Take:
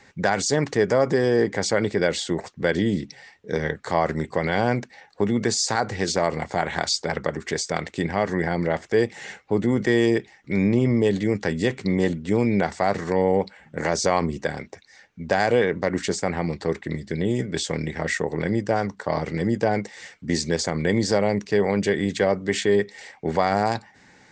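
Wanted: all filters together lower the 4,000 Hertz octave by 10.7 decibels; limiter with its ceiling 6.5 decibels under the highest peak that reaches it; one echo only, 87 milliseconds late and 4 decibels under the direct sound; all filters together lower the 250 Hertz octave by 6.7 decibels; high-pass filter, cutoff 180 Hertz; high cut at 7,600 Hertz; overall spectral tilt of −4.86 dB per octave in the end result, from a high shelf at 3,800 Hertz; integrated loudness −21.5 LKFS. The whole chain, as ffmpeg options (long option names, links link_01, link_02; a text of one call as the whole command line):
ffmpeg -i in.wav -af "highpass=180,lowpass=7600,equalizer=frequency=250:width_type=o:gain=-7.5,highshelf=frequency=3800:gain=-7.5,equalizer=frequency=4000:width_type=o:gain=-8,alimiter=limit=-15dB:level=0:latency=1,aecho=1:1:87:0.631,volume=6dB" out.wav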